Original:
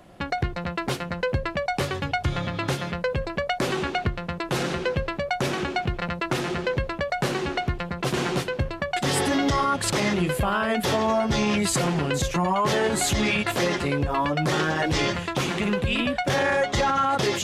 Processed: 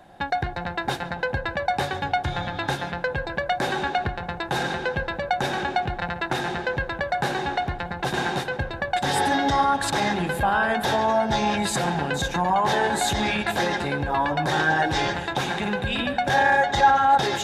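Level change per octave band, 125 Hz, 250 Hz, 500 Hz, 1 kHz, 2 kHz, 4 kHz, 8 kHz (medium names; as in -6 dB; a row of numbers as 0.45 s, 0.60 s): -3.0 dB, -2.5 dB, -1.0 dB, +5.0 dB, +3.0 dB, 0.0 dB, -3.5 dB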